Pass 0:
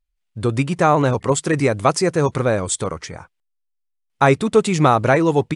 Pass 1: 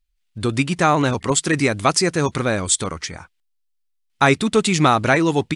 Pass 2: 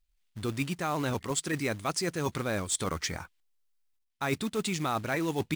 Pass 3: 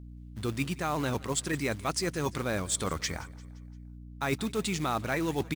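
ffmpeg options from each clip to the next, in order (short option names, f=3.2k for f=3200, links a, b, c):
-af "equalizer=f=125:t=o:w=1:g=-7,equalizer=f=500:t=o:w=1:g=-8,equalizer=f=1k:t=o:w=1:g=-4,equalizer=f=4k:t=o:w=1:g=3,volume=4dB"
-af "areverse,acompressor=threshold=-25dB:ratio=8,areverse,acrusher=bits=4:mode=log:mix=0:aa=0.000001,volume=-2.5dB"
-af "aeval=exprs='val(0)+0.00631*(sin(2*PI*60*n/s)+sin(2*PI*2*60*n/s)/2+sin(2*PI*3*60*n/s)/3+sin(2*PI*4*60*n/s)/4+sin(2*PI*5*60*n/s)/5)':c=same,aecho=1:1:173|346|519|692:0.0794|0.0405|0.0207|0.0105"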